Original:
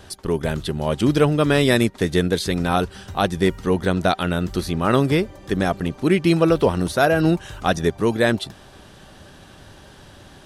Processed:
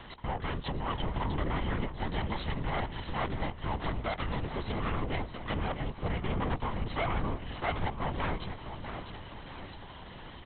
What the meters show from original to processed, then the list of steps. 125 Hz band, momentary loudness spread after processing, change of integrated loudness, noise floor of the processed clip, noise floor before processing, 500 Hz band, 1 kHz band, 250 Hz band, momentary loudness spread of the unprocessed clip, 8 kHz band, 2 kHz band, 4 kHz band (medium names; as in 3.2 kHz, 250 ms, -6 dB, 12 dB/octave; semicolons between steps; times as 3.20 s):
-12.0 dB, 12 LU, -14.5 dB, -47 dBFS, -46 dBFS, -18.5 dB, -10.0 dB, -17.5 dB, 8 LU, under -40 dB, -13.0 dB, -13.5 dB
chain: comb filter that takes the minimum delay 0.99 ms; high-pass 94 Hz 12 dB/octave; low-pass that closes with the level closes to 2.5 kHz, closed at -14 dBFS; compression, threshold -26 dBFS, peak gain reduction 12.5 dB; hard clipper -27.5 dBFS, distortion -9 dB; feedback delay 651 ms, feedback 51%, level -9 dB; LPC vocoder at 8 kHz whisper